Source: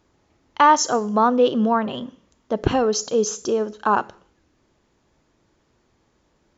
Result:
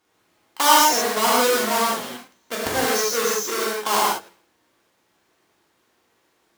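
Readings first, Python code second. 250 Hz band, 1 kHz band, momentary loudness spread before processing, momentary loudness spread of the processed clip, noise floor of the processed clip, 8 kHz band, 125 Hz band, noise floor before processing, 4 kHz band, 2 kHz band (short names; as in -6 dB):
-7.0 dB, -0.5 dB, 15 LU, 14 LU, -67 dBFS, n/a, -10.0 dB, -66 dBFS, +8.5 dB, +5.0 dB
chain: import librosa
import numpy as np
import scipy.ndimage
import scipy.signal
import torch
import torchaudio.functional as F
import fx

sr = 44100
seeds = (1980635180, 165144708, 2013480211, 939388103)

y = fx.halfwave_hold(x, sr)
y = fx.highpass(y, sr, hz=880.0, slope=6)
y = fx.rev_gated(y, sr, seeds[0], gate_ms=200, shape='flat', drr_db=-6.5)
y = fx.dynamic_eq(y, sr, hz=2800.0, q=1.3, threshold_db=-27.0, ratio=4.0, max_db=-5)
y = F.gain(torch.from_numpy(y), -6.5).numpy()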